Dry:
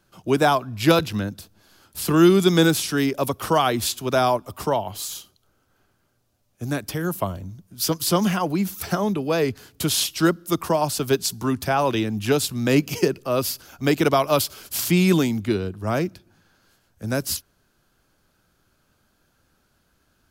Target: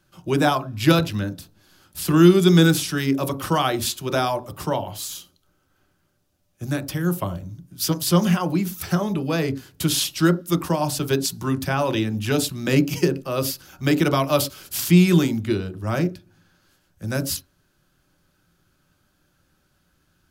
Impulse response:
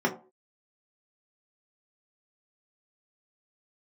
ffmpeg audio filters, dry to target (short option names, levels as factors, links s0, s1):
-filter_complex "[0:a]asplit=2[s0][s1];[1:a]atrim=start_sample=2205,atrim=end_sample=3528,asetrate=32193,aresample=44100[s2];[s1][s2]afir=irnorm=-1:irlink=0,volume=0.0891[s3];[s0][s3]amix=inputs=2:normalize=0"